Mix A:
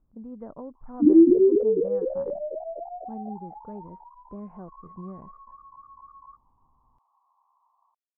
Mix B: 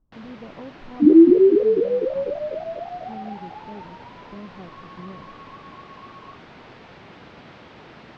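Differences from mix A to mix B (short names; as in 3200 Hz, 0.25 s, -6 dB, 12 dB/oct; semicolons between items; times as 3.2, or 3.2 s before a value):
first sound: unmuted; second sound +4.0 dB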